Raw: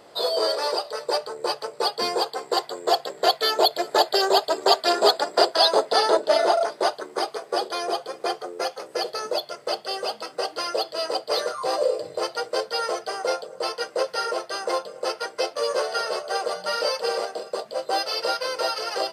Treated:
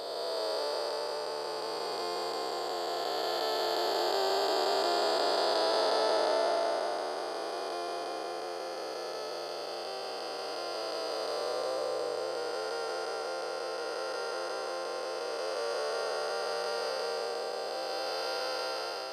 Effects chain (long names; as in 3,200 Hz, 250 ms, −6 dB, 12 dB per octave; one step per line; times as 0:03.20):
spectrum smeared in time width 765 ms
level −3.5 dB